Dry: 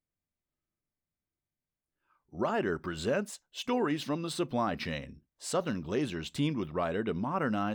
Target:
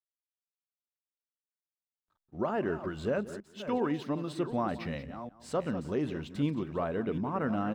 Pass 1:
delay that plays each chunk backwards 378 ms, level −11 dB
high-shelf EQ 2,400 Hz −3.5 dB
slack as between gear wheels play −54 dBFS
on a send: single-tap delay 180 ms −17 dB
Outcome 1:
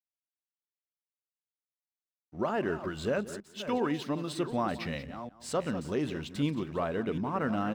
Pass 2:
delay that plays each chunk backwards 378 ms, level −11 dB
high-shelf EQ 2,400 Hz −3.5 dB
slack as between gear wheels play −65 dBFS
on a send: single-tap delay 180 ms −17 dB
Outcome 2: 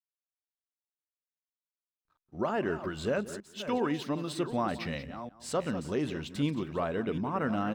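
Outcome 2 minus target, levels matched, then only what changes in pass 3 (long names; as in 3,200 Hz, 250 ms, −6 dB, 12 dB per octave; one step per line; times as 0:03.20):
4,000 Hz band +5.5 dB
change: high-shelf EQ 2,400 Hz −12.5 dB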